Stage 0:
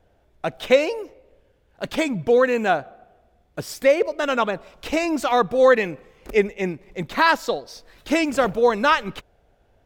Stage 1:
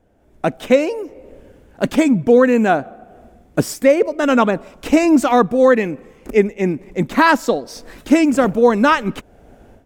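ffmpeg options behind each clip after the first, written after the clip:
-af "equalizer=f=250:t=o:w=1:g=10,equalizer=f=4000:t=o:w=1:g=-6,equalizer=f=8000:t=o:w=1:g=4,dynaudnorm=f=180:g=3:m=5.96,volume=0.891"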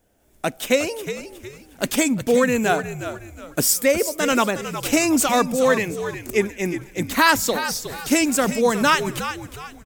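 -filter_complex "[0:a]crystalizer=i=6.5:c=0,asplit=2[s0][s1];[s1]asplit=4[s2][s3][s4][s5];[s2]adelay=363,afreqshift=-72,volume=0.299[s6];[s3]adelay=726,afreqshift=-144,volume=0.105[s7];[s4]adelay=1089,afreqshift=-216,volume=0.0367[s8];[s5]adelay=1452,afreqshift=-288,volume=0.0127[s9];[s6][s7][s8][s9]amix=inputs=4:normalize=0[s10];[s0][s10]amix=inputs=2:normalize=0,volume=0.422"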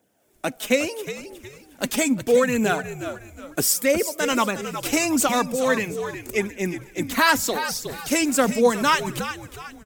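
-filter_complex "[0:a]acrossover=split=120[s0][s1];[s0]aeval=exprs='sgn(val(0))*max(abs(val(0))-0.00106,0)':c=same[s2];[s1]aphaser=in_gain=1:out_gain=1:delay=4.9:decay=0.4:speed=0.76:type=triangular[s3];[s2][s3]amix=inputs=2:normalize=0,volume=0.75"

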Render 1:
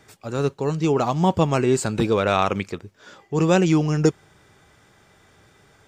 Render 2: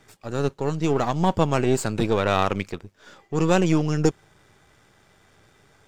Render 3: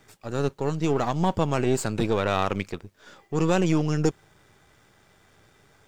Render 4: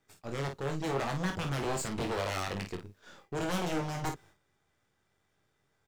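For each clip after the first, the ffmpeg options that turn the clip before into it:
-af "aeval=exprs='if(lt(val(0),0),0.447*val(0),val(0))':c=same"
-filter_complex "[0:a]asplit=2[s0][s1];[s1]alimiter=limit=0.251:level=0:latency=1,volume=0.944[s2];[s0][s2]amix=inputs=2:normalize=0,acrusher=bits=10:mix=0:aa=0.000001,volume=0.447"
-af "aeval=exprs='0.0841*(abs(mod(val(0)/0.0841+3,4)-2)-1)':c=same,agate=range=0.224:threshold=0.00224:ratio=16:detection=peak,aecho=1:1:22|51:0.501|0.422,volume=0.501"

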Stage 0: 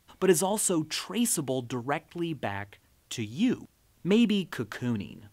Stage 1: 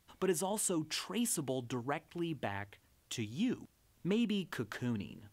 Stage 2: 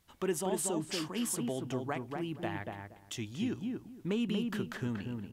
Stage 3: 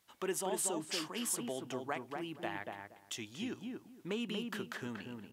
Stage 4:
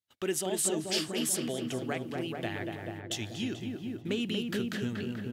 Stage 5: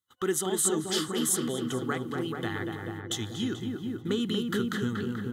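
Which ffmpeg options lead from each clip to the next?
-af "acompressor=threshold=0.0398:ratio=2,volume=0.562"
-filter_complex "[0:a]asplit=2[s0][s1];[s1]adelay=236,lowpass=f=1400:p=1,volume=0.708,asplit=2[s2][s3];[s3]adelay=236,lowpass=f=1400:p=1,volume=0.21,asplit=2[s4][s5];[s5]adelay=236,lowpass=f=1400:p=1,volume=0.21[s6];[s0][s2][s4][s6]amix=inputs=4:normalize=0"
-af "highpass=f=480:p=1"
-filter_complex "[0:a]agate=range=0.0398:threshold=0.00158:ratio=16:detection=peak,equalizer=f=100:t=o:w=0.67:g=11,equalizer=f=1000:t=o:w=0.67:g=-12,equalizer=f=4000:t=o:w=0.67:g=4,asplit=2[s0][s1];[s1]adelay=434,lowpass=f=970:p=1,volume=0.708,asplit=2[s2][s3];[s3]adelay=434,lowpass=f=970:p=1,volume=0.46,asplit=2[s4][s5];[s5]adelay=434,lowpass=f=970:p=1,volume=0.46,asplit=2[s6][s7];[s7]adelay=434,lowpass=f=970:p=1,volume=0.46,asplit=2[s8][s9];[s9]adelay=434,lowpass=f=970:p=1,volume=0.46,asplit=2[s10][s11];[s11]adelay=434,lowpass=f=970:p=1,volume=0.46[s12];[s0][s2][s4][s6][s8][s10][s12]amix=inputs=7:normalize=0,volume=1.88"
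-af "superequalizer=8b=0.282:10b=2.24:12b=0.251:14b=0.501,areverse,acompressor=mode=upward:threshold=0.00891:ratio=2.5,areverse,volume=1.5"

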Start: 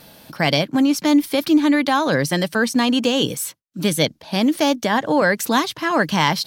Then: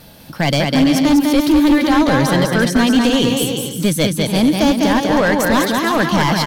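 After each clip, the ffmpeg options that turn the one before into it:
-filter_complex "[0:a]asplit=2[s0][s1];[s1]aecho=0:1:200|340|438|506.6|554.6:0.631|0.398|0.251|0.158|0.1[s2];[s0][s2]amix=inputs=2:normalize=0,volume=3.76,asoftclip=hard,volume=0.266,lowshelf=f=130:g=11.5,volume=1.19"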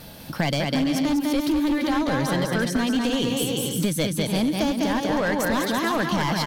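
-af "acompressor=threshold=0.0891:ratio=5"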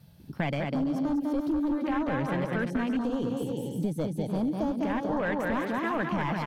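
-af "afwtdn=0.0316,volume=0.531"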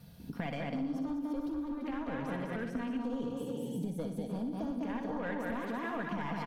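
-af "aecho=1:1:4.2:0.42,acompressor=threshold=0.0126:ratio=4,aecho=1:1:60|120|180|240|300|360|420:0.355|0.202|0.115|0.0657|0.0375|0.0213|0.0122,volume=1.19"

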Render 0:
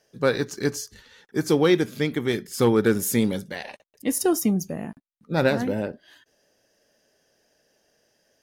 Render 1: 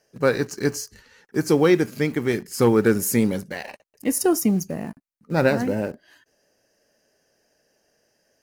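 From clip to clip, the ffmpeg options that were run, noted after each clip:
-filter_complex "[0:a]asplit=2[s0][s1];[s1]acrusher=bits=5:mix=0:aa=0.000001,volume=0.251[s2];[s0][s2]amix=inputs=2:normalize=0,equalizer=f=3500:t=o:w=0.21:g=-13.5"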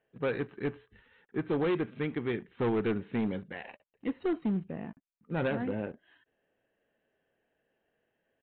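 -af "bandreject=f=590:w=12,aresample=8000,asoftclip=type=hard:threshold=0.158,aresample=44100,volume=0.355"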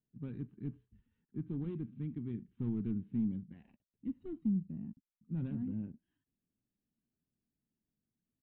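-af "firequalizer=gain_entry='entry(230,0);entry(490,-27);entry(1000,-24);entry(1800,-28);entry(2700,-24)':delay=0.05:min_phase=1,volume=0.841"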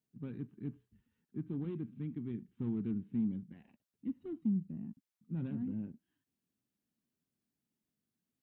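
-af "highpass=f=160:p=1,volume=1.26"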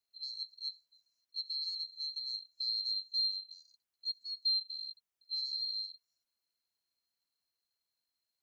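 -af "afftfilt=real='real(if(lt(b,736),b+184*(1-2*mod(floor(b/184),2)),b),0)':imag='imag(if(lt(b,736),b+184*(1-2*mod(floor(b/184),2)),b),0)':win_size=2048:overlap=0.75"

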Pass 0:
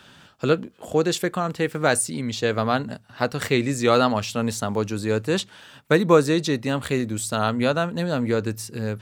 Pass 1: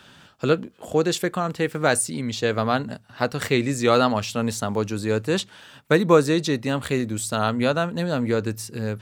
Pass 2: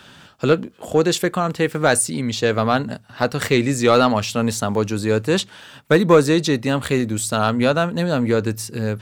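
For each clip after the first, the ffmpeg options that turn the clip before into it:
-af anull
-af "acontrast=41,volume=0.891"

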